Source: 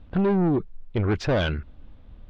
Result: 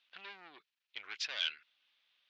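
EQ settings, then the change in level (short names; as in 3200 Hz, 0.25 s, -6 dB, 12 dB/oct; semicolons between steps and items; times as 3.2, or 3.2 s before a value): Butterworth band-pass 4000 Hz, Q 0.97; 0.0 dB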